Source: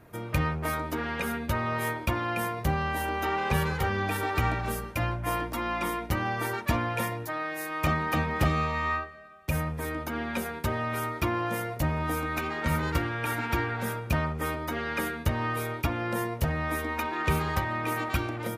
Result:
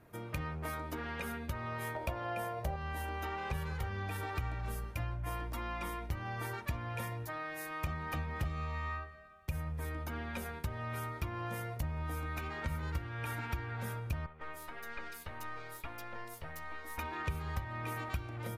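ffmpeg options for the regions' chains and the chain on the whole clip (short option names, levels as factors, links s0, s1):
-filter_complex "[0:a]asettb=1/sr,asplit=3[s0][s1][s2];[s0]atrim=end=1.954[s3];[s1]atrim=start=1.95:end=2.76,asetpts=PTS-STARTPTS,afade=t=in:d=0.004:c=qsin,afade=t=out:st=0.806:d=0.004:c=qsin,equalizer=f=630:t=o:w=0.66:g=14.5,acompressor=mode=upward:threshold=0.0447:ratio=2.5:attack=3.2:release=140:knee=2.83:detection=peak,asplit=2[s4][s5];[s5]adelay=15,volume=0.282[s6];[s4][s6]amix=inputs=2:normalize=0,atrim=end_sample=35721[s7];[s2]atrim=start=2.756[s8];[s3][s7]acrossfade=d=0.004:c1=hsin:c2=qsin[s9];[s9][s8]acrossfade=d=0.004:c1=qsin:c2=hsin,asettb=1/sr,asplit=3[s10][s11][s12];[s10]atrim=end=14.264[s13];[s11]atrim=start=14.26:end=16.98,asetpts=PTS-STARTPTS,afade=t=in:d=0.004:c=qsin,afade=t=out:st=2.716:d=0.004:c=qsin,highpass=f=780:p=1,aeval=exprs='(tanh(17.8*val(0)+0.65)-tanh(0.65))/17.8':c=same,acrossover=split=3400[s14][s15];[s15]adelay=150[s16];[s14][s16]amix=inputs=2:normalize=0,atrim=end_sample=119952[s17];[s12]atrim=start=16.976[s18];[s13][s17]acrossfade=d=0.004:c1=hsin:c2=qsin[s19];[s19][s18]acrossfade=d=0.004:c1=qsin:c2=hsin,asubboost=boost=4:cutoff=110,acompressor=threshold=0.0355:ratio=3,volume=0.447"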